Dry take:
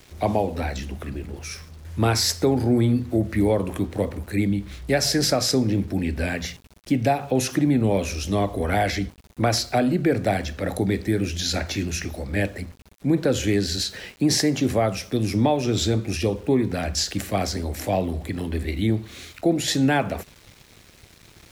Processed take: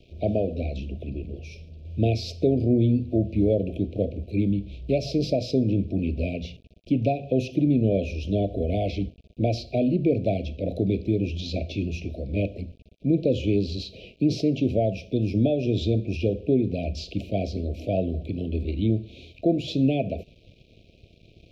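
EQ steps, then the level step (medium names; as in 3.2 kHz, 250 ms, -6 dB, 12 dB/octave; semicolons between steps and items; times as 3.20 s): Chebyshev band-stop 680–2400 Hz, order 5; distance through air 300 m; 0.0 dB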